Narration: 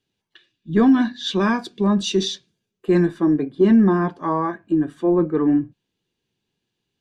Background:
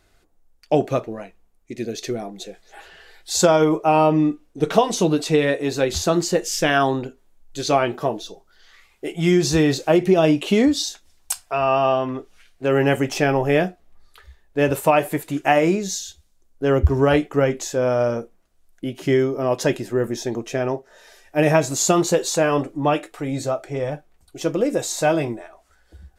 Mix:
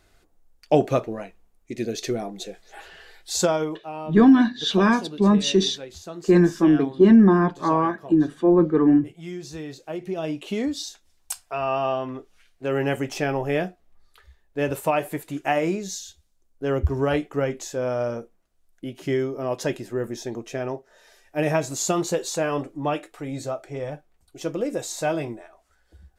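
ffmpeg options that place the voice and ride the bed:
-filter_complex "[0:a]adelay=3400,volume=1dB[a];[1:a]volume=12dB,afade=t=out:st=3.04:d=0.78:silence=0.125893,afade=t=in:st=9.8:d=1.48:silence=0.251189[b];[a][b]amix=inputs=2:normalize=0"

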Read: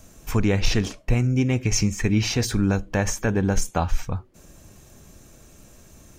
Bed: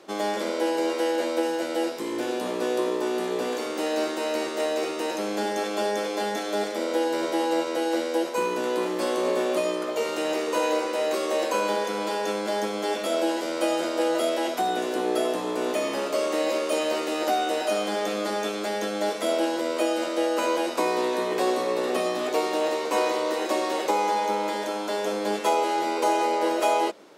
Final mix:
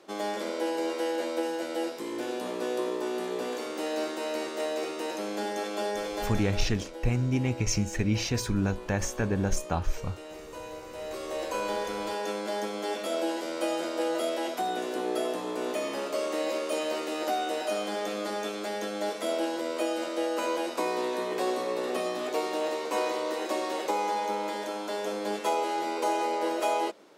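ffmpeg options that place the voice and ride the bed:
-filter_complex "[0:a]adelay=5950,volume=-6dB[a];[1:a]volume=7dB,afade=t=out:st=6.16:d=0.57:silence=0.251189,afade=t=in:st=10.81:d=0.99:silence=0.251189[b];[a][b]amix=inputs=2:normalize=0"

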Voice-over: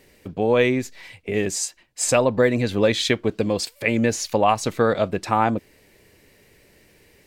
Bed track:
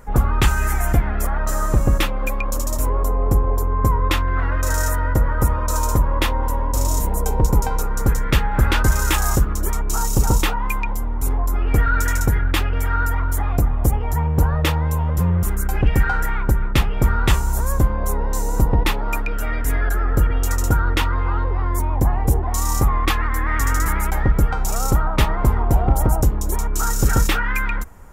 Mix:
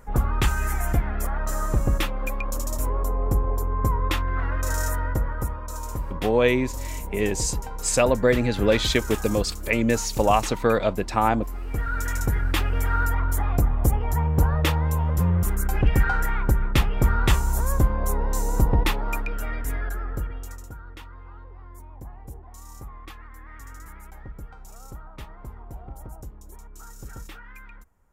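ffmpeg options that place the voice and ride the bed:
-filter_complex "[0:a]adelay=5850,volume=-1.5dB[a];[1:a]volume=4.5dB,afade=t=out:st=4.97:d=0.64:silence=0.421697,afade=t=in:st=11.65:d=1.09:silence=0.316228,afade=t=out:st=18.75:d=1.94:silence=0.1[b];[a][b]amix=inputs=2:normalize=0"

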